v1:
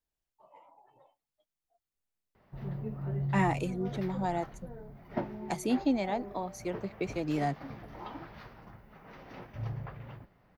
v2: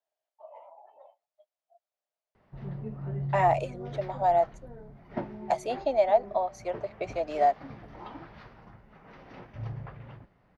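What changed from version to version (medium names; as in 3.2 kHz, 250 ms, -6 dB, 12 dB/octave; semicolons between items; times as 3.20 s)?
speech: add resonant high-pass 630 Hz, resonance Q 6.2; master: add distance through air 58 m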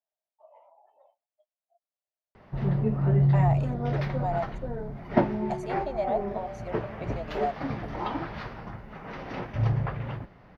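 speech -7.0 dB; background +12.0 dB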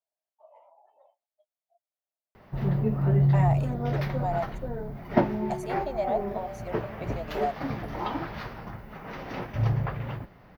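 master: remove distance through air 58 m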